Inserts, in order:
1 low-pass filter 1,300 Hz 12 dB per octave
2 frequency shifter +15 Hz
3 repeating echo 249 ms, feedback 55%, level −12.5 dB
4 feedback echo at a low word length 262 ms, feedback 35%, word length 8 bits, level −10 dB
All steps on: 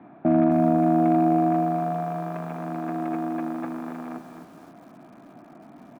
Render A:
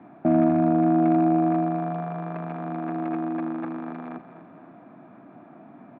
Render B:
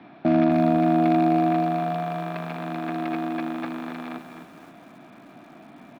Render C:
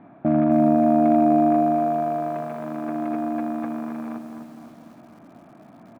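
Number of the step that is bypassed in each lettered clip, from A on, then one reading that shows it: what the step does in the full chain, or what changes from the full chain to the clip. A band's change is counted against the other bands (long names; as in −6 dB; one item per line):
4, 1 kHz band −2.0 dB
1, 2 kHz band +6.5 dB
2, 125 Hz band −4.5 dB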